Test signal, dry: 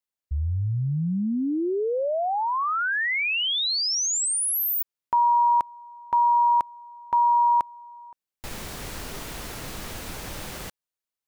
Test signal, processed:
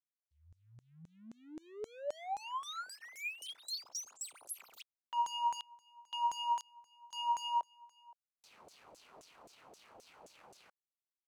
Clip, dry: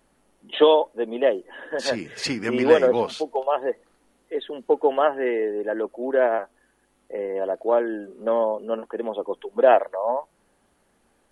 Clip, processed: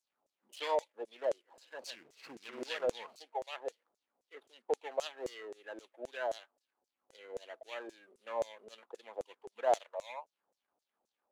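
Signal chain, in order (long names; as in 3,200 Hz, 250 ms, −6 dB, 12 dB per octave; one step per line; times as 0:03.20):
running median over 25 samples
first-order pre-emphasis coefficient 0.8
auto-filter band-pass saw down 3.8 Hz 520–7,300 Hz
level +5.5 dB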